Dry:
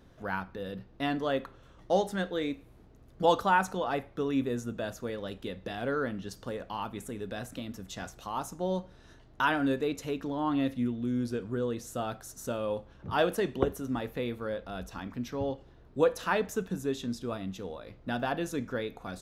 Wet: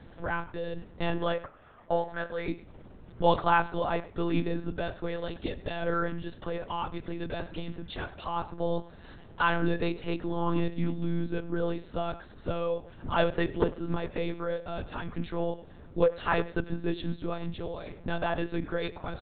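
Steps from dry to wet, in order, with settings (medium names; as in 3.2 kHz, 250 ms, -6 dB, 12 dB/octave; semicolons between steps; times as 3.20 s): 1.33–2.48 s: three-band isolator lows -14 dB, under 490 Hz, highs -24 dB, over 2.6 kHz; in parallel at +2.5 dB: compression, threshold -43 dBFS, peak gain reduction 22.5 dB; on the sum: speakerphone echo 100 ms, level -18 dB; monotone LPC vocoder at 8 kHz 170 Hz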